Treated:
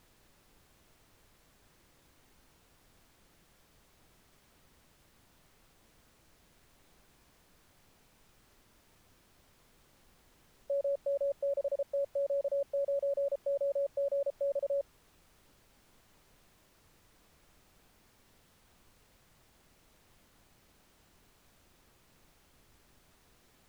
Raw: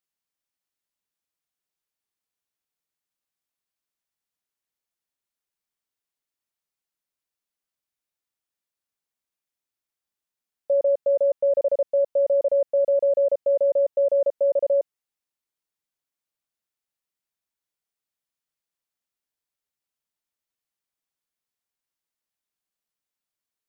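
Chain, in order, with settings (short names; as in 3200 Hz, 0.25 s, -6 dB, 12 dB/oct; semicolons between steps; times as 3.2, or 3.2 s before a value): HPF 680 Hz; added noise pink -58 dBFS; gain -7 dB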